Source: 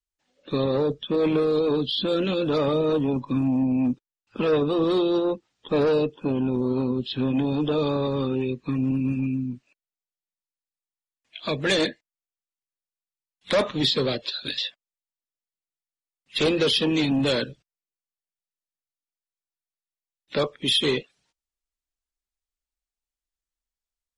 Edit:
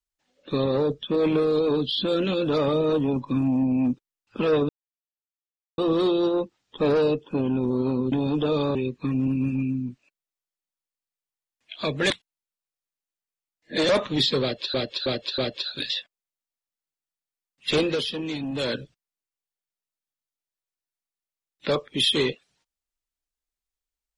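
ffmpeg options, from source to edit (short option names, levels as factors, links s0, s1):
-filter_complex "[0:a]asplit=11[s0][s1][s2][s3][s4][s5][s6][s7][s8][s9][s10];[s0]atrim=end=4.69,asetpts=PTS-STARTPTS,afade=t=out:st=4.686:d=0.004:c=hsin,apad=pad_dur=1.09[s11];[s1]atrim=start=4.69:end=7.032,asetpts=PTS-STARTPTS,afade=t=in:d=0.004:c=hsin[s12];[s2]atrim=start=7.378:end=8.012[s13];[s3]atrim=start=8.388:end=11.742[s14];[s4]atrim=start=11.738:end=13.532,asetpts=PTS-STARTPTS,areverse[s15];[s5]atrim=start=13.528:end=14.382[s16];[s6]atrim=start=14.058:end=14.382[s17];[s7]atrim=start=14.058:end=14.382[s18];[s8]atrim=start=14.058:end=16.74,asetpts=PTS-STARTPTS,afade=t=out:st=2.402:d=0.28:silence=0.398107[s19];[s9]atrim=start=16.74:end=17.21,asetpts=PTS-STARTPTS,volume=0.398[s20];[s10]atrim=start=17.21,asetpts=PTS-STARTPTS,afade=t=in:d=0.28:silence=0.398107[s21];[s11][s12]concat=n=2:v=0:a=1[s22];[s22][s13]acrossfade=d=0.004:c1=hsin:c2=hsin[s23];[s23][s14]acrossfade=d=0.004:c1=hsin:c2=hsin[s24];[s24][s15]acrossfade=d=0.004:c1=hsin:c2=hsin[s25];[s25][s16]acrossfade=d=0.004:c1=hsin:c2=hsin[s26];[s26][s17]acrossfade=d=0.004:c1=hsin:c2=hsin[s27];[s27][s18]acrossfade=d=0.004:c1=hsin:c2=hsin[s28];[s19][s20][s21]concat=n=3:v=0:a=1[s29];[s28][s29]acrossfade=d=0.004:c1=hsin:c2=hsin"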